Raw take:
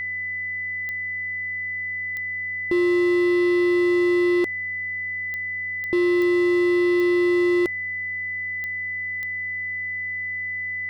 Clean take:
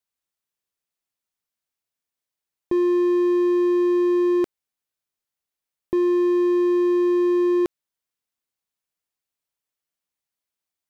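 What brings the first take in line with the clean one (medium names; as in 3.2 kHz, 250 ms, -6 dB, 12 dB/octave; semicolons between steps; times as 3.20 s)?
clip repair -15 dBFS; de-click; de-hum 91.8 Hz, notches 13; band-stop 2 kHz, Q 30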